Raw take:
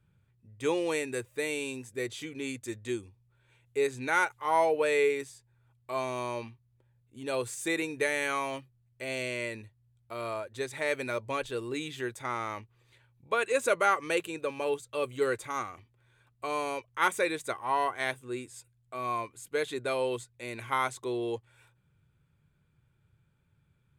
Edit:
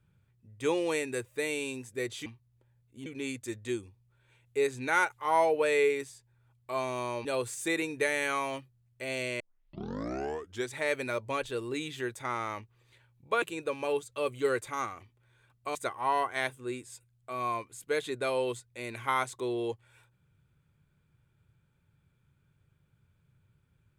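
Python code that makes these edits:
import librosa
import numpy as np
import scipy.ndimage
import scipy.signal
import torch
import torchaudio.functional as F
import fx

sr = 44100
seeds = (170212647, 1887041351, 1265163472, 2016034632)

y = fx.edit(x, sr, fx.move(start_s=6.45, length_s=0.8, to_s=2.26),
    fx.tape_start(start_s=9.4, length_s=1.32),
    fx.cut(start_s=13.42, length_s=0.77),
    fx.cut(start_s=16.52, length_s=0.87), tone=tone)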